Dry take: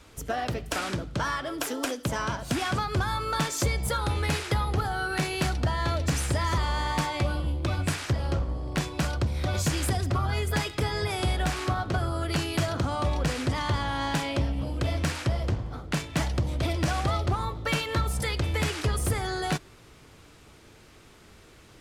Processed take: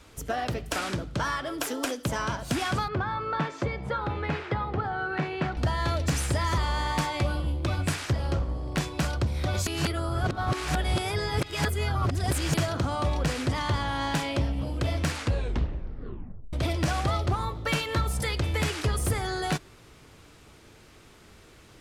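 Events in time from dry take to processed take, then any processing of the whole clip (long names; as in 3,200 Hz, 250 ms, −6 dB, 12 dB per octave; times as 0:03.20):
0:02.88–0:05.57: band-pass filter 110–2,100 Hz
0:09.67–0:12.54: reverse
0:15.10: tape stop 1.43 s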